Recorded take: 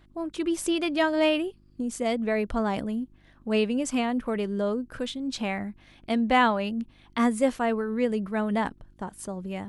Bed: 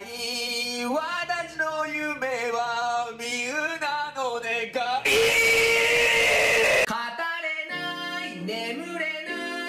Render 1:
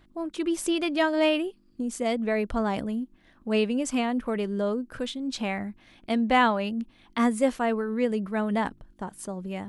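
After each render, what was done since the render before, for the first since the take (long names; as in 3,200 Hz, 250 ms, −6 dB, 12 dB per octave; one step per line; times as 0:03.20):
hum removal 50 Hz, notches 3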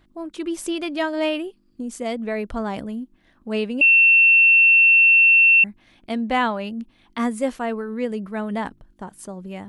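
0:03.81–0:05.64: beep over 2,700 Hz −10 dBFS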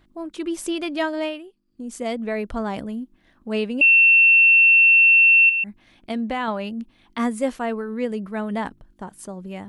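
0:01.09–0:01.98: duck −11 dB, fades 0.31 s linear
0:05.49–0:06.48: downward compressor, threshold −21 dBFS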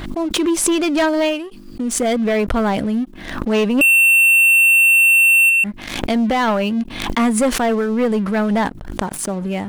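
leveller curve on the samples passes 3
background raised ahead of every attack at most 57 dB per second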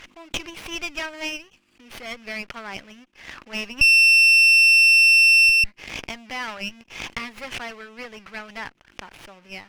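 resonant band-pass 2,600 Hz, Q 2.8
windowed peak hold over 5 samples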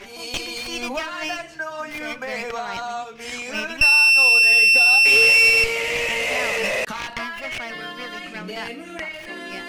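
mix in bed −3 dB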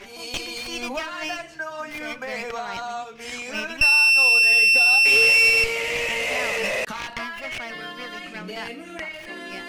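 level −2 dB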